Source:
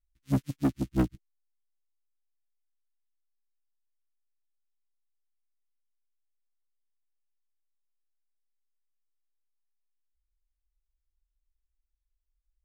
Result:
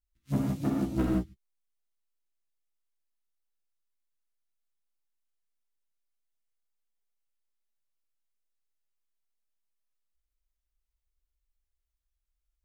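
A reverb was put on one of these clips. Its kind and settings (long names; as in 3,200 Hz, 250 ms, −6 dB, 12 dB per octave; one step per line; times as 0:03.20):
reverb whose tail is shaped and stops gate 200 ms flat, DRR −4 dB
level −5 dB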